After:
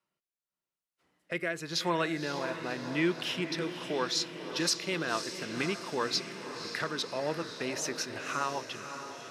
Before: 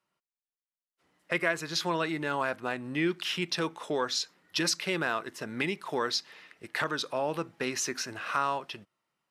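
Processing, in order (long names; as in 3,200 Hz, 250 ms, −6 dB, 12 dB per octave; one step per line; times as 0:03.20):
rotating-speaker cabinet horn 0.9 Hz, later 7 Hz, at 0:04.31
feedback delay with all-pass diffusion 545 ms, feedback 62%, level −9 dB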